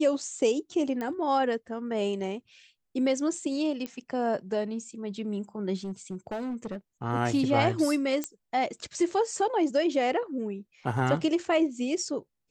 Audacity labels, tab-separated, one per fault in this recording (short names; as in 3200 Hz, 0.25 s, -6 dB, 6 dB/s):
1.010000	1.010000	pop -21 dBFS
3.860000	3.860000	pop -22 dBFS
5.840000	6.770000	clipped -29.5 dBFS
8.240000	8.240000	pop -15 dBFS